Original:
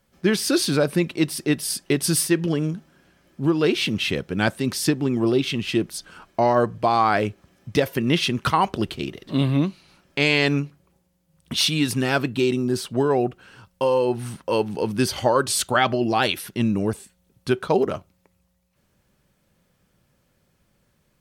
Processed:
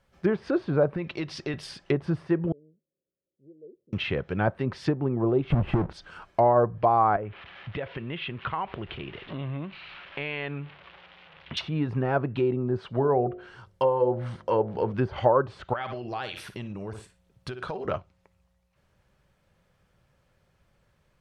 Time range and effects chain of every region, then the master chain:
0:00.96–0:01.54: high shelf with overshoot 7,400 Hz −7.5 dB, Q 1.5 + downward compressor 3 to 1, threshold −24 dBFS
0:02.52–0:03.93: Butterworth low-pass 550 Hz 72 dB per octave + first difference
0:05.50–0:05.93: each half-wave held at its own peak + low-shelf EQ 380 Hz +8.5 dB + downward compressor 16 to 1, threshold −15 dBFS
0:07.16–0:11.57: spike at every zero crossing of −22.5 dBFS + Butterworth low-pass 3,200 Hz + downward compressor 3 to 1, threshold −30 dBFS
0:12.88–0:14.94: notch filter 2,600 Hz, Q 9.3 + hum removal 51.44 Hz, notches 14
0:15.73–0:17.85: flutter between parallel walls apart 9.6 metres, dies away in 0.26 s + downward compressor 10 to 1, threshold −28 dBFS
whole clip: treble cut that deepens with the level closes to 970 Hz, closed at −18 dBFS; low-pass filter 2,300 Hz 6 dB per octave; parametric band 250 Hz −9.5 dB 1.3 octaves; level +2 dB

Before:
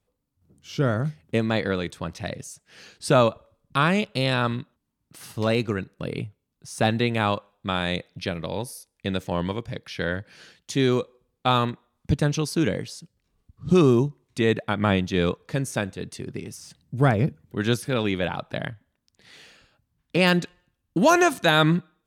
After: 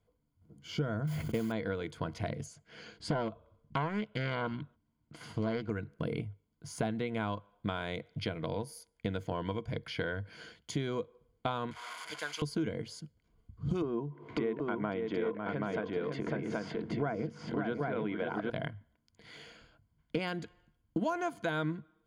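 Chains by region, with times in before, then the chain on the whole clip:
0:01.07–0:01.52: noise that follows the level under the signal 12 dB + level that may fall only so fast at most 41 dB per second
0:02.46–0:05.70: high-frequency loss of the air 50 metres + highs frequency-modulated by the lows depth 0.56 ms
0:11.71–0:12.42: linear delta modulator 64 kbit/s, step −30 dBFS + high-pass filter 1,300 Hz + high-shelf EQ 8,600 Hz −4.5 dB
0:13.82–0:18.50: band-pass filter 240–2,100 Hz + upward compression, threshold −24 dBFS + multi-tap delay 552/779 ms −7.5/−4 dB
whole clip: EQ curve with evenly spaced ripples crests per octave 1.8, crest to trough 10 dB; downward compressor 6 to 1, threshold −31 dBFS; high-shelf EQ 3,700 Hz −11.5 dB

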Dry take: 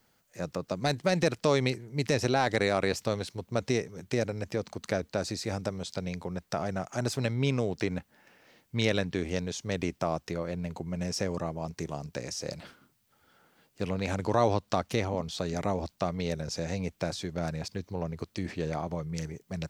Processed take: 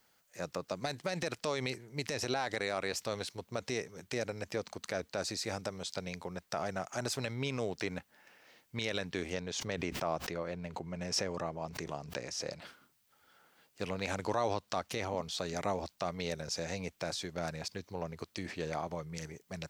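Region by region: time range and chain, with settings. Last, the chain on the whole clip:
0:09.34–0:12.62: high-shelf EQ 6,000 Hz −12 dB + background raised ahead of every attack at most 59 dB per second
whole clip: low-shelf EQ 400 Hz −10 dB; brickwall limiter −21.5 dBFS

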